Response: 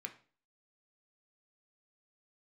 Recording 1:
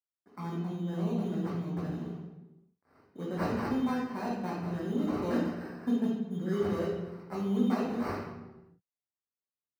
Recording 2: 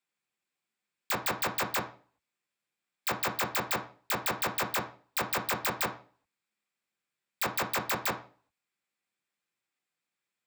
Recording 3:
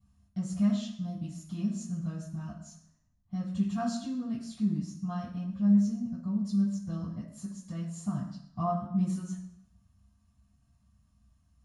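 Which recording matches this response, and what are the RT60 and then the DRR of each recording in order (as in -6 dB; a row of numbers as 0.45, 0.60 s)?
2; 1.1, 0.40, 0.70 s; -4.5, 4.0, -10.0 dB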